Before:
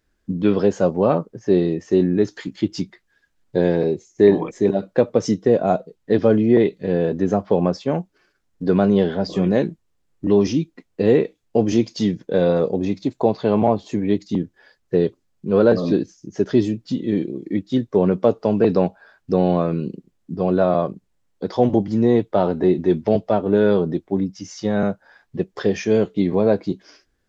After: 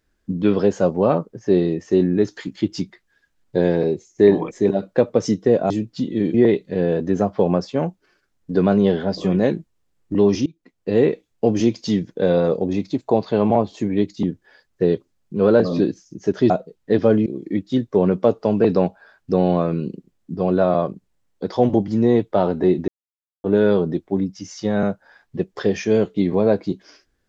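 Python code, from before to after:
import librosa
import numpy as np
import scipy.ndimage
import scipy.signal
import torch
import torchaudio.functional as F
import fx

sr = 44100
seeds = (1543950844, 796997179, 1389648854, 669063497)

y = fx.edit(x, sr, fx.swap(start_s=5.7, length_s=0.76, other_s=16.62, other_length_s=0.64),
    fx.fade_in_from(start_s=10.58, length_s=0.61, floor_db=-23.5),
    fx.silence(start_s=22.88, length_s=0.56), tone=tone)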